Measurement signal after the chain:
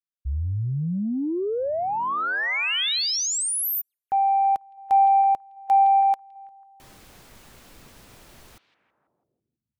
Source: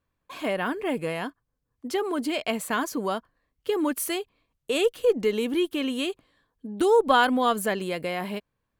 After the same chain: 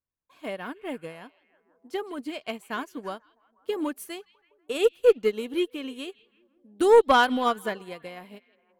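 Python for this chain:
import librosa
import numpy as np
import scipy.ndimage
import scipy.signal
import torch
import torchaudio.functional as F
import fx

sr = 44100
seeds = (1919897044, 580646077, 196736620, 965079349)

p1 = 10.0 ** (-13.0 / 20.0) * np.tanh(x / 10.0 ** (-13.0 / 20.0))
p2 = p1 + fx.echo_stepped(p1, sr, ms=164, hz=3100.0, octaves=-0.7, feedback_pct=70, wet_db=-10.0, dry=0)
p3 = fx.upward_expand(p2, sr, threshold_db=-34.0, expansion=2.5)
y = F.gain(torch.from_numpy(p3), 6.0).numpy()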